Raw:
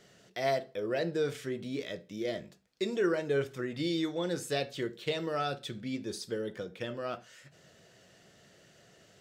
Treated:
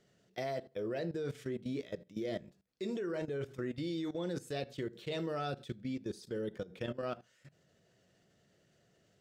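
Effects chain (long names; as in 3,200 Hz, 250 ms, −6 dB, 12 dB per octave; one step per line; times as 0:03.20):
low-shelf EQ 490 Hz +7 dB
output level in coarse steps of 17 dB
level −2.5 dB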